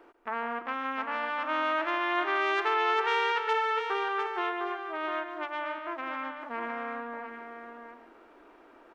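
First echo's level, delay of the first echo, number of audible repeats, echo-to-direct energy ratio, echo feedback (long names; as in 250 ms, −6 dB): −11.0 dB, 143 ms, 3, −6.0 dB, repeats not evenly spaced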